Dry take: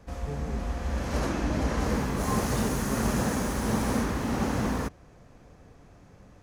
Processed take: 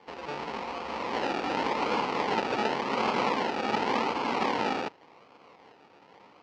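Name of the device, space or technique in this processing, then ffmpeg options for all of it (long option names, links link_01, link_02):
circuit-bent sampling toy: -af "acrusher=samples=33:mix=1:aa=0.000001:lfo=1:lforange=19.8:lforate=0.89,highpass=490,equalizer=frequency=620:width_type=q:width=4:gain=-6,equalizer=frequency=910:width_type=q:width=4:gain=5,equalizer=frequency=1600:width_type=q:width=4:gain=-7,equalizer=frequency=3600:width_type=q:width=4:gain=-7,lowpass=frequency=4400:width=0.5412,lowpass=frequency=4400:width=1.3066,volume=6.5dB"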